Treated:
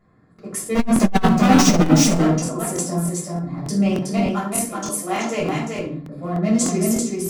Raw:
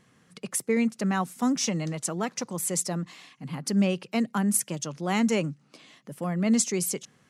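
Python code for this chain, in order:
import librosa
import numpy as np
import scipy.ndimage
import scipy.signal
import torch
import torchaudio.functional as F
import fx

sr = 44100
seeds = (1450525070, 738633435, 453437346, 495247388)

y = fx.wiener(x, sr, points=15)
y = fx.highpass(y, sr, hz=350.0, slope=12, at=(4.17, 5.4))
y = y + 0.39 * np.pad(y, (int(2.9 * sr / 1000.0), 0))[:len(y)]
y = fx.leveller(y, sr, passes=5, at=(0.75, 1.88))
y = y + 10.0 ** (-3.5 / 20.0) * np.pad(y, (int(379 * sr / 1000.0), 0))[:len(y)]
y = fx.room_shoebox(y, sr, seeds[0], volume_m3=570.0, walls='furnished', distance_m=6.5)
y = fx.buffer_crackle(y, sr, first_s=0.34, period_s=0.3, block=1024, kind='repeat')
y = fx.transformer_sat(y, sr, knee_hz=140.0)
y = y * 10.0 ** (-4.0 / 20.0)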